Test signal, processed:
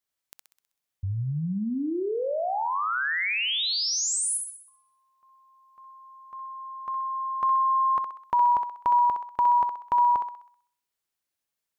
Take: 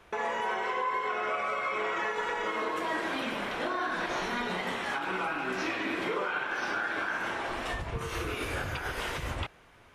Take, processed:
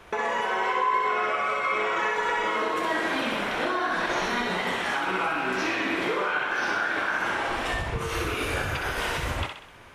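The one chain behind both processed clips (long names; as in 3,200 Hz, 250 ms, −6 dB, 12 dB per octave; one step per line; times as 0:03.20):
in parallel at −1.5 dB: downward compressor, threshold −38 dBFS
on the sum: feedback echo with a high-pass in the loop 64 ms, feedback 51%, high-pass 520 Hz, level −5 dB
level +2 dB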